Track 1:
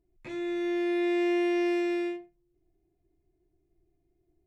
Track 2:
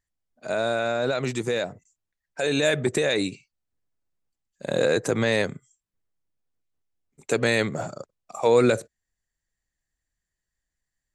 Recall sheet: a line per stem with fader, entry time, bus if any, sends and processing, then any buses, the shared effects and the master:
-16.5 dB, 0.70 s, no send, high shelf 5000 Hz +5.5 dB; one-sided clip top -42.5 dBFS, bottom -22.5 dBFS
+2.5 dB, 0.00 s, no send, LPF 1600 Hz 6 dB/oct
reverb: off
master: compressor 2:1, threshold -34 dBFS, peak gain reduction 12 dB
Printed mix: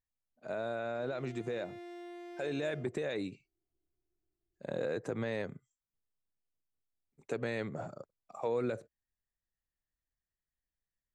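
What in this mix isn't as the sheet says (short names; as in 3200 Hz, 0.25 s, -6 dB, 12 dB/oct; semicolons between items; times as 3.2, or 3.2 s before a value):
stem 1: missing high shelf 5000 Hz +5.5 dB; stem 2 +2.5 dB -> -9.0 dB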